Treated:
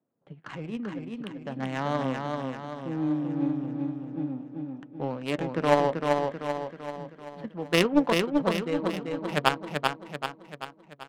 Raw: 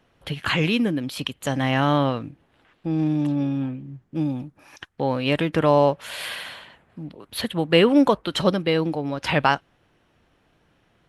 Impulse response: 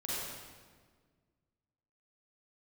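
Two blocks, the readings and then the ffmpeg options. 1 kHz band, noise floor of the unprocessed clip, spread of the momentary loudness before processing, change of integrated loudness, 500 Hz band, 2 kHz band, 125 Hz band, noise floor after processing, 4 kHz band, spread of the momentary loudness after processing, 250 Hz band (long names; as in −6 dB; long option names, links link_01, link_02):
−4.5 dB, −65 dBFS, 16 LU, −6.5 dB, −5.5 dB, −5.5 dB, −8.5 dB, −55 dBFS, −7.0 dB, 16 LU, −5.5 dB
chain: -filter_complex "[0:a]highpass=frequency=140:width=0.5412,highpass=frequency=140:width=1.3066,dynaudnorm=framelen=310:gausssize=13:maxgain=11.5dB,flanger=delay=2.9:depth=8.7:regen=55:speed=0.45:shape=triangular,aeval=exprs='0.631*(cos(1*acos(clip(val(0)/0.631,-1,1)))-cos(1*PI/2))+0.178*(cos(3*acos(clip(val(0)/0.631,-1,1)))-cos(3*PI/2))+0.02*(cos(5*acos(clip(val(0)/0.631,-1,1)))-cos(5*PI/2))':channel_layout=same,adynamicsmooth=sensitivity=2.5:basefreq=730,asplit=2[link_01][link_02];[link_02]aecho=0:1:387|774|1161|1548|1935|2322|2709:0.668|0.341|0.174|0.0887|0.0452|0.0231|0.0118[link_03];[link_01][link_03]amix=inputs=2:normalize=0,volume=1dB"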